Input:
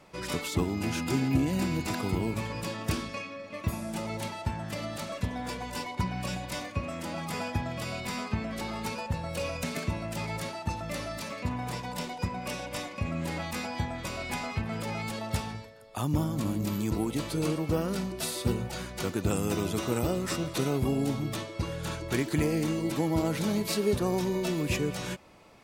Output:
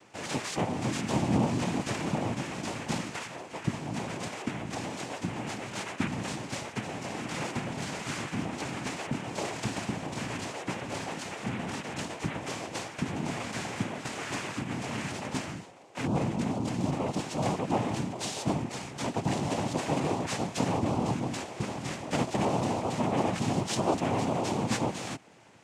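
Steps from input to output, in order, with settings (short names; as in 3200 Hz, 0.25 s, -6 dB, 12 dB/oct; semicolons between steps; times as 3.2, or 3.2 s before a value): noise vocoder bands 4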